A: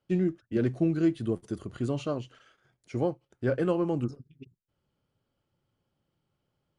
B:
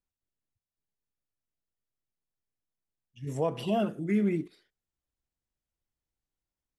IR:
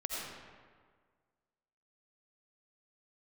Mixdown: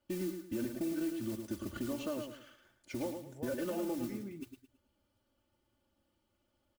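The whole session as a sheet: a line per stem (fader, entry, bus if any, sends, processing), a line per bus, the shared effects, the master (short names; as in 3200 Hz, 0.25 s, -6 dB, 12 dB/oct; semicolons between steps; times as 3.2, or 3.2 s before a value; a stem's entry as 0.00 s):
-2.0 dB, 0.00 s, no send, echo send -8 dB, compressor 6:1, threshold -34 dBFS, peak gain reduction 13.5 dB; modulation noise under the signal 16 dB; comb 3.4 ms, depth 100%
-18.0 dB, 0.00 s, no send, no echo send, dry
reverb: off
echo: feedback echo 0.109 s, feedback 31%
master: limiter -27.5 dBFS, peak gain reduction 4.5 dB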